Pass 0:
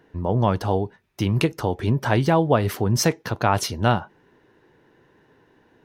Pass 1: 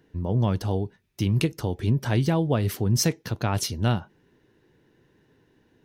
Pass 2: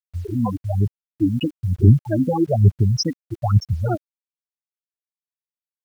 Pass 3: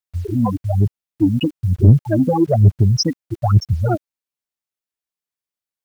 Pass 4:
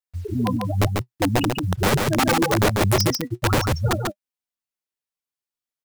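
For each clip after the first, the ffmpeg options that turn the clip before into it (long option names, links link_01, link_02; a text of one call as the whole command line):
ffmpeg -i in.wav -af "equalizer=frequency=960:width=0.51:gain=-10.5" out.wav
ffmpeg -i in.wav -af "aphaser=in_gain=1:out_gain=1:delay=4:decay=0.76:speed=1.1:type=sinusoidal,afftfilt=real='re*gte(hypot(re,im),0.316)':imag='im*gte(hypot(re,im),0.316)':win_size=1024:overlap=0.75,acrusher=bits=8:mix=0:aa=0.000001,volume=2.5dB" out.wav
ffmpeg -i in.wav -af "acontrast=27,volume=-1dB" out.wav
ffmpeg -i in.wav -af "flanger=delay=3.9:depth=4.5:regen=52:speed=0.46:shape=sinusoidal,aeval=exprs='(mod(5.01*val(0)+1,2)-1)/5.01':channel_layout=same,aecho=1:1:143:0.668" out.wav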